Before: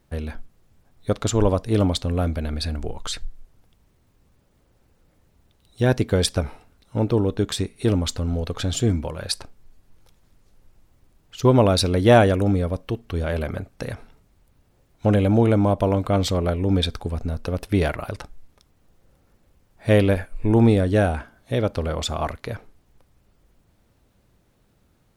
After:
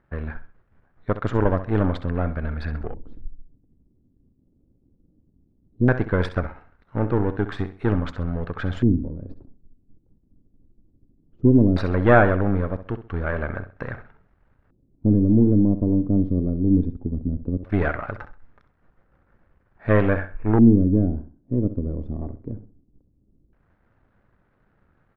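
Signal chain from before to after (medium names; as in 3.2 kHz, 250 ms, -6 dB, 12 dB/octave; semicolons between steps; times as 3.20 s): partial rectifier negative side -7 dB; feedback delay 65 ms, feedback 30%, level -12.5 dB; LFO low-pass square 0.17 Hz 280–1600 Hz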